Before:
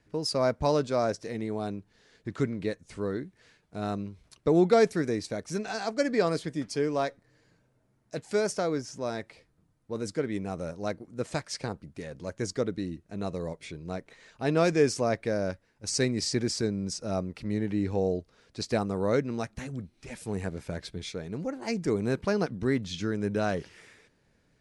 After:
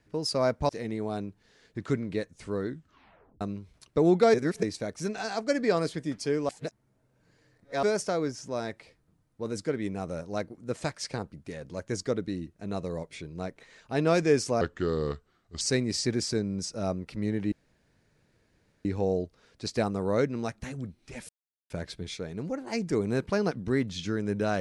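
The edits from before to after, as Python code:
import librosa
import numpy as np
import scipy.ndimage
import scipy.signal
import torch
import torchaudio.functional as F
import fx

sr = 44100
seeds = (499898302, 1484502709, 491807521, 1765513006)

y = fx.edit(x, sr, fx.cut(start_s=0.69, length_s=0.5),
    fx.tape_stop(start_s=3.18, length_s=0.73),
    fx.reverse_span(start_s=4.84, length_s=0.29),
    fx.reverse_span(start_s=6.99, length_s=1.34),
    fx.speed_span(start_s=15.11, length_s=0.78, speed=0.78),
    fx.insert_room_tone(at_s=17.8, length_s=1.33),
    fx.silence(start_s=20.24, length_s=0.41), tone=tone)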